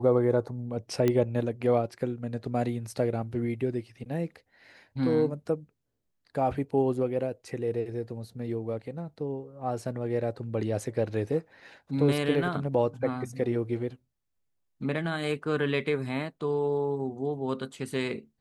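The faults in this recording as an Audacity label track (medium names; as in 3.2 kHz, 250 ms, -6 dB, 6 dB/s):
1.080000	1.080000	pop -13 dBFS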